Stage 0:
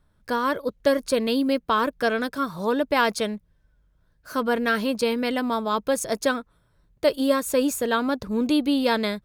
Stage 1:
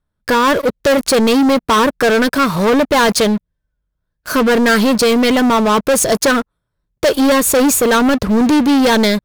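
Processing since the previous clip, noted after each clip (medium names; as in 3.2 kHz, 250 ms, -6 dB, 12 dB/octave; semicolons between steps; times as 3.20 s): waveshaping leveller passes 5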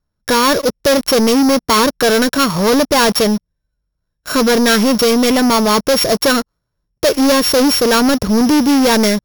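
sorted samples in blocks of 8 samples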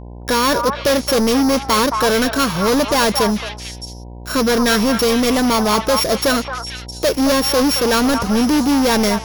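mains buzz 60 Hz, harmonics 17, -30 dBFS -6 dB/octave; repeats whose band climbs or falls 221 ms, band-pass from 1 kHz, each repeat 1.4 oct, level -2.5 dB; trim -3.5 dB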